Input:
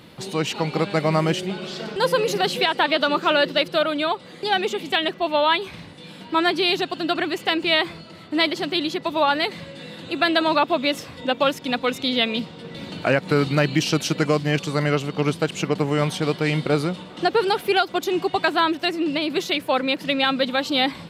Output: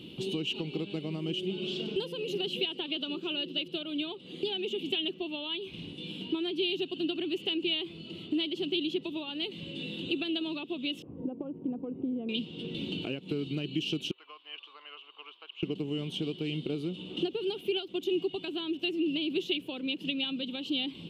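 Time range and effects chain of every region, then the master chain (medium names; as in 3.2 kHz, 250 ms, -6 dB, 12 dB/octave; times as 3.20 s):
11.02–12.29 s: low-pass 1 kHz 24 dB/octave + compression 2.5:1, threshold -25 dBFS
14.11–15.63 s: ladder high-pass 980 Hz, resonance 65% + distance through air 360 m
whole clip: compression 4:1, threshold -32 dBFS; FFT filter 100 Hz 0 dB, 380 Hz +9 dB, 570 Hz -7 dB, 1.9 kHz -15 dB, 2.9 kHz +13 dB, 4.7 kHz -6 dB; trim -4.5 dB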